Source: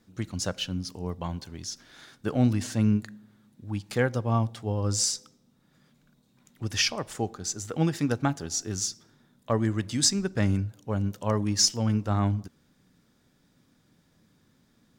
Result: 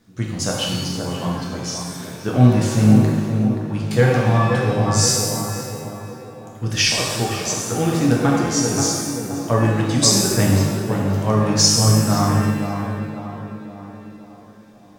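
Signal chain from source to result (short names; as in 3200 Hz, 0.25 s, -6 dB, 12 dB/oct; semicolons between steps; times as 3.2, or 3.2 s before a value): tape echo 0.528 s, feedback 61%, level -4 dB, low-pass 1200 Hz; shimmer reverb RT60 1.3 s, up +7 st, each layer -8 dB, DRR -2 dB; gain +4.5 dB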